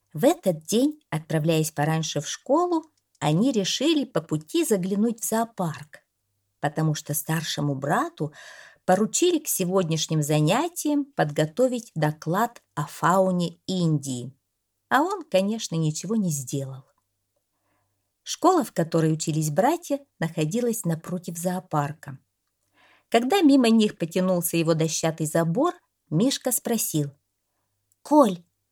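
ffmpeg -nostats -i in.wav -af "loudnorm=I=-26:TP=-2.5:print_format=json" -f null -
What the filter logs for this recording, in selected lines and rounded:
"input_i" : "-24.2",
"input_tp" : "-4.5",
"input_lra" : "4.3",
"input_thresh" : "-34.7",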